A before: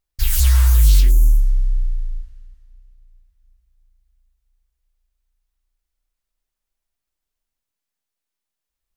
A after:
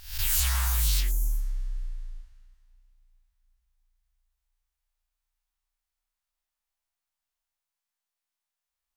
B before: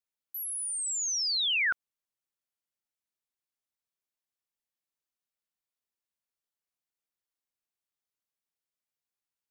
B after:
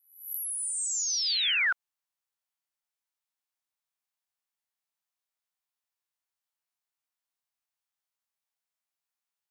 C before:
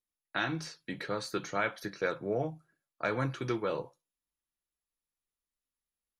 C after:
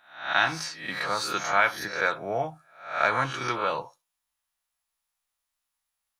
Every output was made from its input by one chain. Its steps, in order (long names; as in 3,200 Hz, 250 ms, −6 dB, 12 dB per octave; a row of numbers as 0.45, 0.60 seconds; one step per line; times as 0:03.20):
peak hold with a rise ahead of every peak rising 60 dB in 0.52 s
low shelf with overshoot 570 Hz −9.5 dB, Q 1.5
loudness normalisation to −27 LKFS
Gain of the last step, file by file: −5.0, −1.0, +7.5 decibels